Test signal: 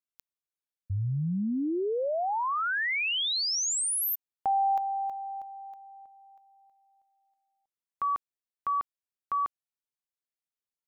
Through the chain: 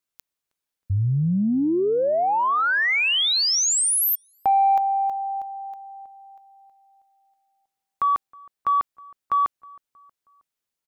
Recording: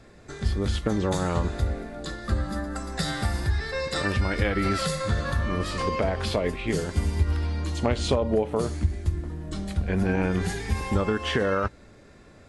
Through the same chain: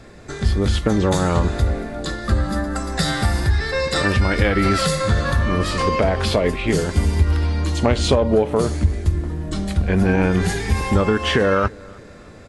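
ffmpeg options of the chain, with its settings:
ffmpeg -i in.wav -filter_complex "[0:a]asplit=2[link_01][link_02];[link_02]asoftclip=type=tanh:threshold=-22.5dB,volume=-6.5dB[link_03];[link_01][link_03]amix=inputs=2:normalize=0,asplit=2[link_04][link_05];[link_05]adelay=317,lowpass=frequency=2000:poles=1,volume=-24dB,asplit=2[link_06][link_07];[link_07]adelay=317,lowpass=frequency=2000:poles=1,volume=0.51,asplit=2[link_08][link_09];[link_09]adelay=317,lowpass=frequency=2000:poles=1,volume=0.51[link_10];[link_04][link_06][link_08][link_10]amix=inputs=4:normalize=0,volume=5dB" out.wav

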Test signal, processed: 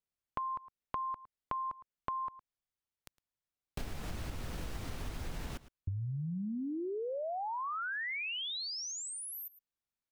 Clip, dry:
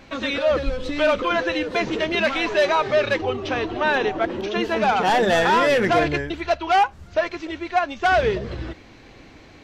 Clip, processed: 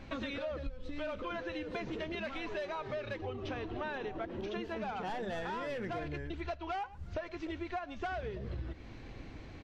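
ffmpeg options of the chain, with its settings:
ffmpeg -i in.wav -filter_complex "[0:a]lowshelf=frequency=170:gain=10.5,asplit=2[link_01][link_02];[link_02]aecho=0:1:110:0.0794[link_03];[link_01][link_03]amix=inputs=2:normalize=0,acompressor=threshold=-29dB:ratio=12,highshelf=frequency=6300:gain=-7.5,volume=-6.5dB" out.wav

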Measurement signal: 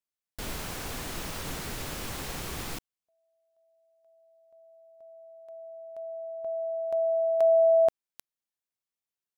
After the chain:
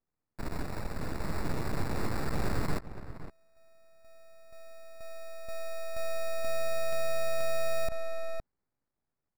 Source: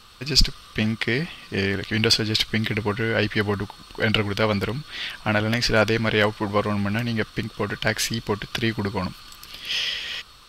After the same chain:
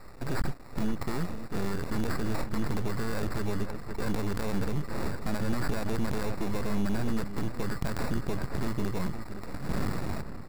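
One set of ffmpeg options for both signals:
ffmpeg -i in.wav -filter_complex "[0:a]highshelf=frequency=4300:gain=6,acrusher=samples=14:mix=1:aa=0.000001,aeval=exprs='max(val(0),0)':channel_layout=same,dynaudnorm=framelen=380:gausssize=11:maxgain=11dB,asplit=2[link_01][link_02];[link_02]adelay=513.1,volume=-17dB,highshelf=frequency=4000:gain=-11.5[link_03];[link_01][link_03]amix=inputs=2:normalize=0,acrusher=bits=9:mode=log:mix=0:aa=0.000001,acompressor=threshold=-24dB:ratio=12:attack=0.64:release=44:knee=6:detection=peak,lowshelf=frequency=400:gain=11.5,volume=-5dB" out.wav

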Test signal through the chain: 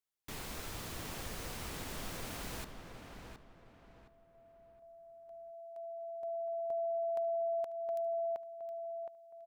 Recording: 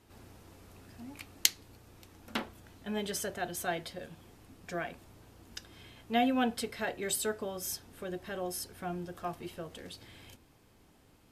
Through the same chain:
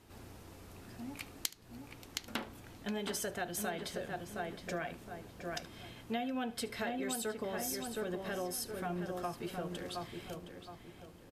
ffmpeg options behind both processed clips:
ffmpeg -i in.wav -filter_complex "[0:a]asplit=2[link_01][link_02];[link_02]adelay=717,lowpass=frequency=2400:poles=1,volume=-6dB,asplit=2[link_03][link_04];[link_04]adelay=717,lowpass=frequency=2400:poles=1,volume=0.35,asplit=2[link_05][link_06];[link_06]adelay=717,lowpass=frequency=2400:poles=1,volume=0.35,asplit=2[link_07][link_08];[link_08]adelay=717,lowpass=frequency=2400:poles=1,volume=0.35[link_09];[link_03][link_05][link_07][link_09]amix=inputs=4:normalize=0[link_10];[link_01][link_10]amix=inputs=2:normalize=0,acompressor=threshold=-36dB:ratio=8,asplit=2[link_11][link_12];[link_12]aecho=0:1:73:0.0944[link_13];[link_11][link_13]amix=inputs=2:normalize=0,volume=2dB" out.wav

